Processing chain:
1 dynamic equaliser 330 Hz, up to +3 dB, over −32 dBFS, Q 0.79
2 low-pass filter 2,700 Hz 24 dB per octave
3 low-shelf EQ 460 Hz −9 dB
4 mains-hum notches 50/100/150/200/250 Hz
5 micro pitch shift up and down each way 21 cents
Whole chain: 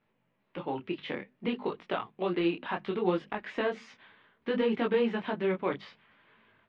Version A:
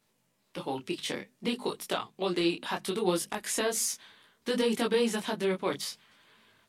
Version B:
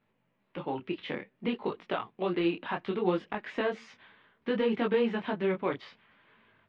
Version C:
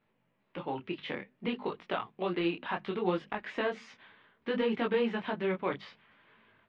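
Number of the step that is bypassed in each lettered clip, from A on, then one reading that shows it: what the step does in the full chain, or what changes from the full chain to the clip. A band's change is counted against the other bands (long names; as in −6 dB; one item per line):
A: 2, 4 kHz band +8.5 dB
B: 4, change in momentary loudness spread −1 LU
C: 1, 250 Hz band −2.0 dB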